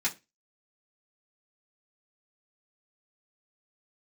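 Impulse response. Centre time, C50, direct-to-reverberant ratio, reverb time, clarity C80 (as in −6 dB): 11 ms, 18.5 dB, −7.5 dB, 0.25 s, 26.0 dB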